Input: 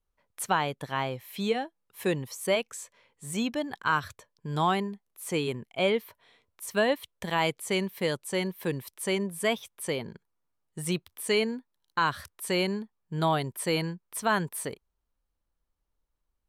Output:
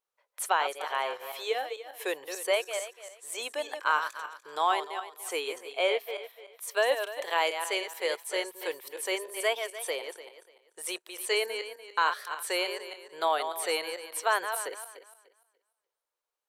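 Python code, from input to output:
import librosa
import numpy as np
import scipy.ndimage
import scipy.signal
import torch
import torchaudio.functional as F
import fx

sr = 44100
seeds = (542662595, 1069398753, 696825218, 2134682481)

y = fx.reverse_delay_fb(x, sr, ms=147, feedback_pct=47, wet_db=-8.0)
y = scipy.signal.sosfilt(scipy.signal.cheby2(4, 40, 220.0, 'highpass', fs=sr, output='sos'), y)
y = fx.wow_flutter(y, sr, seeds[0], rate_hz=2.1, depth_cents=24.0)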